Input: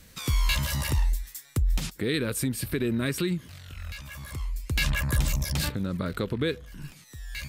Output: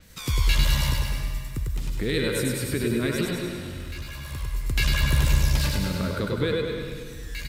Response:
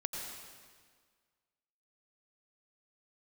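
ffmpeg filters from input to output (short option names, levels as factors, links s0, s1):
-filter_complex "[0:a]asettb=1/sr,asplit=3[s0][s1][s2];[s0]atrim=end=0.894[s3];[s1]atrim=start=0.89:end=1.93,asetpts=PTS-STARTPTS,afade=t=in:d=0.004:c=qsin,afade=t=out:st=1.036:d=0.004:c=qsin,acrossover=split=370|2500[s4][s5][s6];[s4]acompressor=threshold=0.0398:ratio=4[s7];[s5]acompressor=threshold=0.00282:ratio=4[s8];[s6]acompressor=threshold=0.00398:ratio=4[s9];[s7][s8][s9]amix=inputs=3:normalize=0[s10];[s2]atrim=start=1.926[s11];[s3][s10]acrossfade=d=0.004:c1=hsin:c2=qsin[s12];[s12][s11]acrossfade=d=0.004:c1=qsin:c2=hsin,asettb=1/sr,asplit=3[s13][s14][s15];[s13]atrim=end=3.254[s16];[s14]atrim=start=3.25:end=4.22,asetpts=PTS-STARTPTS,afade=t=in:d=0.004:c=qsin,afade=t=out:st=0.966:d=0.004:c=qsin,asoftclip=type=hard:threshold=0.02[s17];[s15]atrim=start=4.216[s18];[s16][s17]acrossfade=d=0.004:c1=hsin:c2=qsin[s19];[s19][s18]acrossfade=d=0.004:c1=qsin:c2=hsin,aecho=1:1:101|202|303|404|505|606|707:0.562|0.298|0.158|0.0837|0.0444|0.0235|0.0125,asplit=2[s20][s21];[1:a]atrim=start_sample=2205,adelay=99[s22];[s21][s22]afir=irnorm=-1:irlink=0,volume=0.668[s23];[s20][s23]amix=inputs=2:normalize=0,adynamicequalizer=threshold=0.00501:dfrequency=6400:dqfactor=0.7:tfrequency=6400:tqfactor=0.7:attack=5:release=100:ratio=0.375:range=2.5:mode=cutabove:tftype=highshelf"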